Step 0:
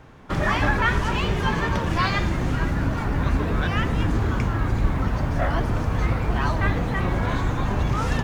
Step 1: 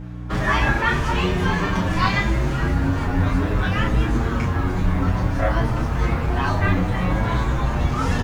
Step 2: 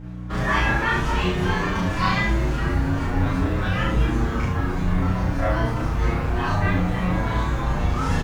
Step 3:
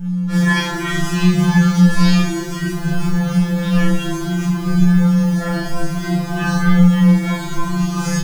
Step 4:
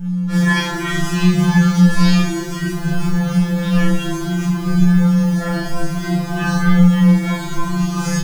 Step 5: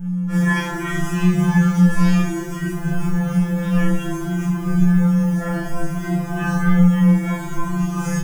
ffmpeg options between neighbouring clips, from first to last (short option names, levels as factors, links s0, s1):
-filter_complex "[0:a]aecho=1:1:22|33:0.562|0.562,aeval=exprs='val(0)+0.0355*(sin(2*PI*60*n/s)+sin(2*PI*2*60*n/s)/2+sin(2*PI*3*60*n/s)/3+sin(2*PI*4*60*n/s)/4+sin(2*PI*5*60*n/s)/5)':c=same,asplit=2[s0][s1];[s1]adelay=7.7,afreqshift=0.59[s2];[s0][s2]amix=inputs=2:normalize=1,volume=1.41"
-af "aecho=1:1:33|72:0.631|0.668,volume=0.562"
-filter_complex "[0:a]bass=f=250:g=13,treble=f=4000:g=13,acrossover=split=380[s0][s1];[s0]alimiter=limit=0.473:level=0:latency=1:release=48[s2];[s2][s1]amix=inputs=2:normalize=0,afftfilt=real='re*2.83*eq(mod(b,8),0)':imag='im*2.83*eq(mod(b,8),0)':win_size=2048:overlap=0.75,volume=1.5"
-af anull
-af "equalizer=f=4200:w=2:g=-14.5,volume=0.75"